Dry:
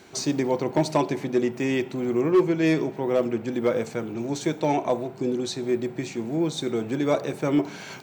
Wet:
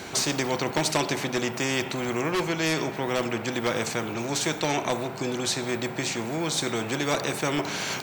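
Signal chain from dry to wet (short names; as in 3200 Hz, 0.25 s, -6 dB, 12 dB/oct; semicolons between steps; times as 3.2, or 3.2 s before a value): spectral compressor 2:1; gain +3.5 dB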